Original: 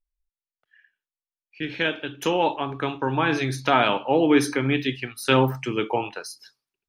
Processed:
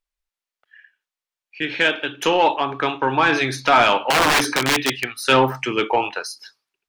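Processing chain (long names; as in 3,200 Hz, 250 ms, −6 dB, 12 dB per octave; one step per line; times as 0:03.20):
0:04.10–0:05.16: wrap-around overflow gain 16 dB
mid-hump overdrive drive 15 dB, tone 4,300 Hz, clips at −3 dBFS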